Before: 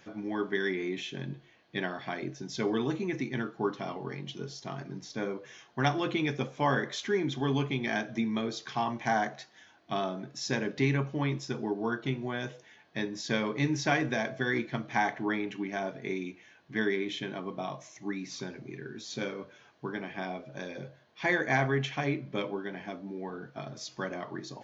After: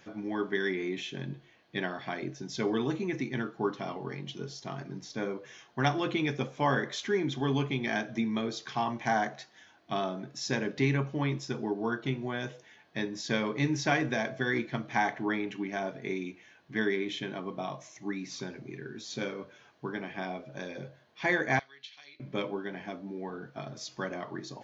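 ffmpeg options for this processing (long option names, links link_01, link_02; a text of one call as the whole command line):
ffmpeg -i in.wav -filter_complex "[0:a]asettb=1/sr,asplit=3[link_01][link_02][link_03];[link_01]atrim=end=21.594[link_04];[link_02]atrim=start=21.59:end=22.2,asetpts=PTS-STARTPTS,afade=type=in:duration=0.004:curve=qsin,afade=type=out:start_time=0.606:duration=0.004:curve=qsin,bandpass=frequency=4200:width_type=q:width=4.4[link_05];[link_03]atrim=start=22.196[link_06];[link_04][link_05]acrossfade=duration=0.004:curve1=hsin:curve2=qsin[link_07];[link_07][link_06]acrossfade=duration=0.004:curve1=qsin:curve2=hsin" out.wav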